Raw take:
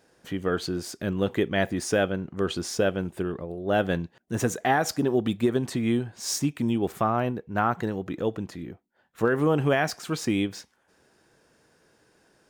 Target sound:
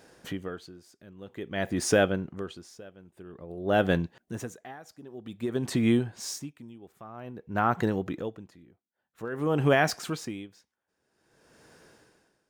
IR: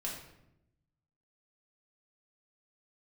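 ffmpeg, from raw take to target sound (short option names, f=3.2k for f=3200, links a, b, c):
-filter_complex "[0:a]asplit=2[a][b];[b]acompressor=threshold=-37dB:ratio=6,volume=1.5dB[c];[a][c]amix=inputs=2:normalize=0,aeval=exprs='val(0)*pow(10,-25*(0.5-0.5*cos(2*PI*0.51*n/s))/20)':c=same"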